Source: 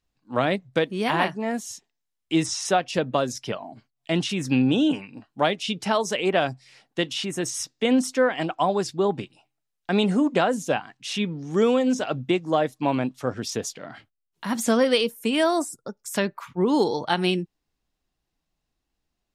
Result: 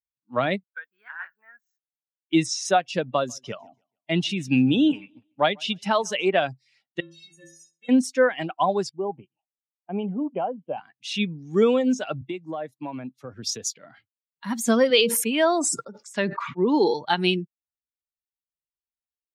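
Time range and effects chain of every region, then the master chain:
0.63–2.33 band-pass 1500 Hz, Q 6.8 + requantised 12-bit, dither none
3.03–6.28 expander -40 dBFS + feedback echo 0.145 s, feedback 40%, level -20.5 dB
7–7.89 metallic resonator 160 Hz, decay 0.77 s, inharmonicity 0.03 + flutter echo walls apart 11.8 m, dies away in 0.38 s
8.89–10.78 rippled Chebyshev low-pass 3200 Hz, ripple 6 dB + bell 2000 Hz -12 dB 1.3 oct
12.21–13.74 compressor, threshold -24 dBFS + three-band expander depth 40%
14.9–16.94 HPF 180 Hz + air absorption 81 m + sustainer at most 33 dB/s
whole clip: per-bin expansion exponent 1.5; HPF 120 Hz; bell 2800 Hz +2.5 dB; gain +3 dB

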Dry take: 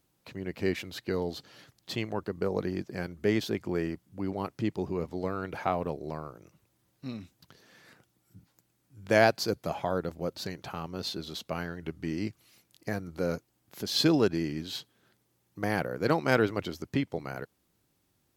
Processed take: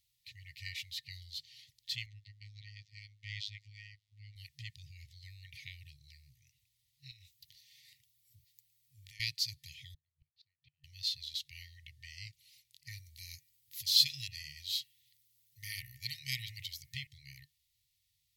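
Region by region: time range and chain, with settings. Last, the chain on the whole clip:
2.06–4.36 LPF 4900 Hz + robotiser 104 Hz
7.11–9.2 compressor 4:1, threshold -43 dBFS + high shelf 12000 Hz +11.5 dB
9.94–10.84 flipped gate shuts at -28 dBFS, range -35 dB + air absorption 270 m
12.98–17.07 high shelf 9200 Hz +12 dB + de-hum 106.7 Hz, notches 27
whole clip: ten-band EQ 125 Hz -3 dB, 250 Hz -9 dB, 1000 Hz -8 dB, 4000 Hz +8 dB; FFT band-reject 150–1800 Hz; high shelf 10000 Hz +3.5 dB; gain -6 dB

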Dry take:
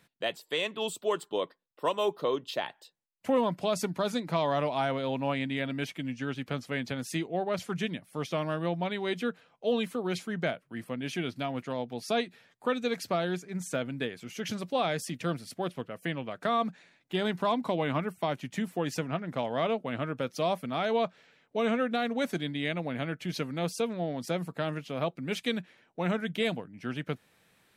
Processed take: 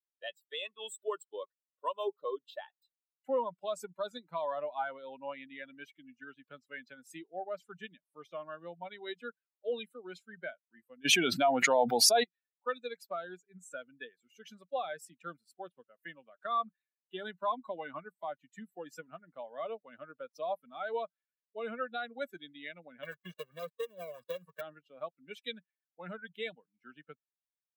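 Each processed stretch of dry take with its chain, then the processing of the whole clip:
11.05–12.24 dynamic EQ 750 Hz, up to +6 dB, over -45 dBFS, Q 1.8 + fast leveller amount 100%
23.03–24.61 switching dead time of 0.29 ms + comb 1.8 ms, depth 76% + three-band squash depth 100%
whole clip: per-bin expansion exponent 2; Bessel high-pass 460 Hz, order 2; gain +1 dB

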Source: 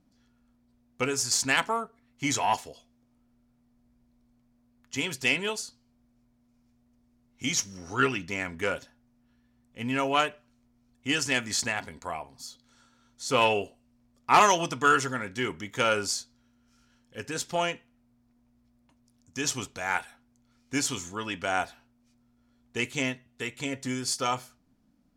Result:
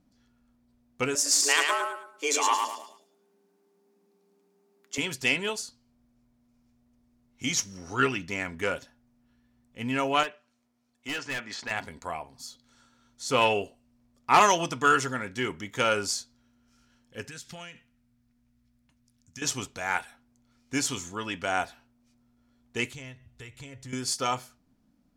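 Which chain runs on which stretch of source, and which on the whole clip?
1.15–4.98 tone controls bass -4 dB, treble +3 dB + frequency shift +160 Hz + feedback echo 0.108 s, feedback 32%, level -4 dB
10.23–11.71 HPF 490 Hz 6 dB/oct + treble ducked by the level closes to 2800 Hz, closed at -27 dBFS + hard clip -28.5 dBFS
17.28–19.42 band shelf 560 Hz -9 dB 2.3 oct + compressor 12:1, threshold -38 dBFS
22.93–23.93 compressor 2:1, threshold -51 dBFS + resonant low shelf 140 Hz +12 dB, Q 1.5
whole clip: dry

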